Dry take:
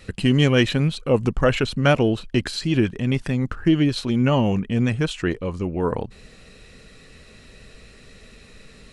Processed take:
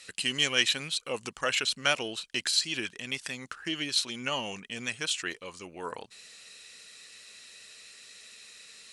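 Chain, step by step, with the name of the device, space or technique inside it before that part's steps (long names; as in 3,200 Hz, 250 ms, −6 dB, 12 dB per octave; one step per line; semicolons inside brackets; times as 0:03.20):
piezo pickup straight into a mixer (low-pass filter 9,000 Hz 12 dB per octave; first difference)
level +8 dB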